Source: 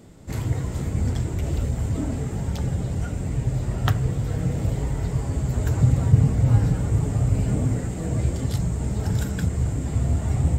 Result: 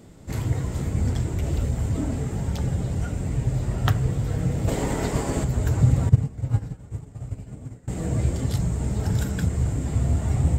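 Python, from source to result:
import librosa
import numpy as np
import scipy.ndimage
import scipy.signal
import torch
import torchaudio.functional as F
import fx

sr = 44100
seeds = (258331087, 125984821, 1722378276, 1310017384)

y = fx.spec_clip(x, sr, under_db=16, at=(4.67, 5.43), fade=0.02)
y = fx.upward_expand(y, sr, threshold_db=-27.0, expansion=2.5, at=(6.09, 7.88))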